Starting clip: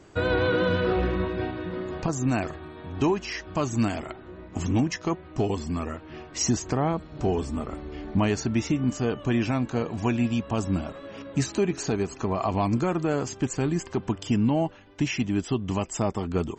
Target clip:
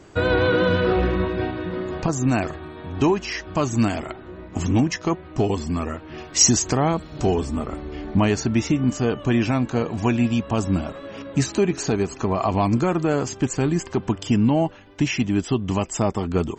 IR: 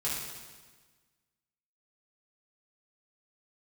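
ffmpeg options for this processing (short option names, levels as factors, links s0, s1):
-filter_complex "[0:a]asettb=1/sr,asplit=3[s0][s1][s2];[s0]atrim=end=6.184[s3];[s1]atrim=start=6.18:end=7.34,asetpts=PTS-STARTPTS,afade=t=in:d=0.004:c=qsin,afade=t=out:st=1.156:d=0.004:c=qsin,highshelf=f=3600:g=10.5[s4];[s2]atrim=start=7.336[s5];[s3][s4]acrossfade=d=0.004:c1=hsin:c2=qsin[s6];[s6][s5]acrossfade=d=0.004:c1=qsin:c2=hsin,volume=1.68"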